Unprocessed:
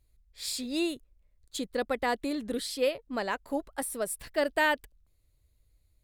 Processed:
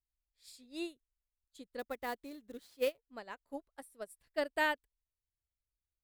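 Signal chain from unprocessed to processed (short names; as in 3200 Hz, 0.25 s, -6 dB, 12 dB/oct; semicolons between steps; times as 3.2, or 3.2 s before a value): 1.79–3.06 sample-rate reducer 16000 Hz, jitter 20%; upward expander 2.5:1, over -38 dBFS; gain -4.5 dB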